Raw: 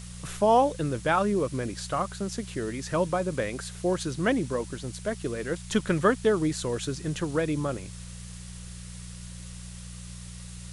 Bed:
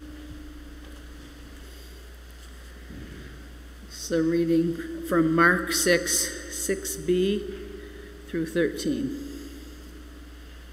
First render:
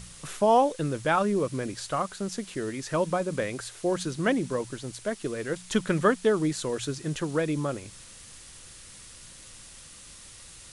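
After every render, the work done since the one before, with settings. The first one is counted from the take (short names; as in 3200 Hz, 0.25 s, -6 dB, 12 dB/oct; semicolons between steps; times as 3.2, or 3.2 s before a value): de-hum 60 Hz, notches 3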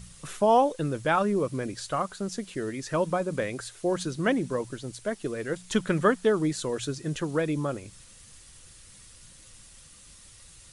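denoiser 6 dB, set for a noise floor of -48 dBFS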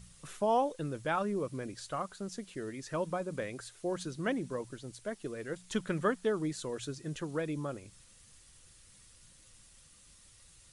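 gain -8 dB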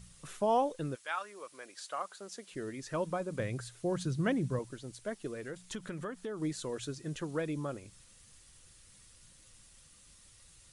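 0.94–2.51 HPF 1400 Hz -> 360 Hz; 3.39–4.59 bell 120 Hz +13 dB 1.1 oct; 5.34–6.42 compressor 4:1, threshold -37 dBFS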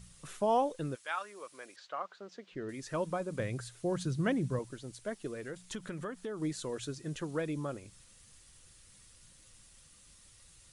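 1.76–2.69 air absorption 200 m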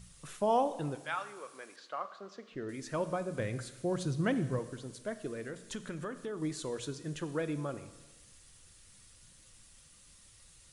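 Schroeder reverb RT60 1.2 s, combs from 27 ms, DRR 12 dB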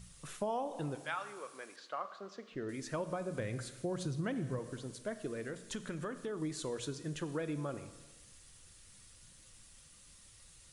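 compressor 4:1, threshold -34 dBFS, peak gain reduction 9.5 dB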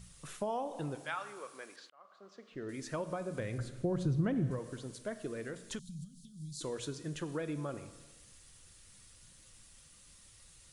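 1.9–2.79 fade in; 3.58–4.51 tilt -2.5 dB/oct; 5.79–6.61 elliptic band-stop 180–4100 Hz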